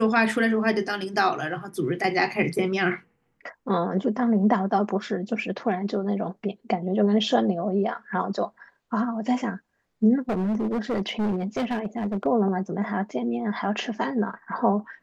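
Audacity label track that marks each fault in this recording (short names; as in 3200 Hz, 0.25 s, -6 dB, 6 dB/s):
10.290000	12.270000	clipped -22 dBFS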